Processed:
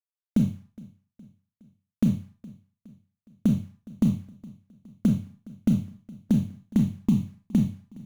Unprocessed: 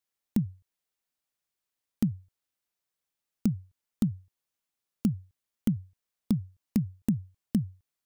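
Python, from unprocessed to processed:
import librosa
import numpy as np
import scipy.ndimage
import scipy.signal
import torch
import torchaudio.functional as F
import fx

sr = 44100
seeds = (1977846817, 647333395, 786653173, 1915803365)

y = scipy.signal.sosfilt(scipy.signal.butter(2, 1900.0, 'lowpass', fs=sr, output='sos'), x)
y = fx.quant_companded(y, sr, bits=6)
y = fx.env_flanger(y, sr, rest_ms=4.8, full_db=-27.0)
y = fx.echo_feedback(y, sr, ms=415, feedback_pct=50, wet_db=-22)
y = fx.rev_schroeder(y, sr, rt60_s=0.34, comb_ms=28, drr_db=4.0)
y = y * 10.0 ** (4.5 / 20.0)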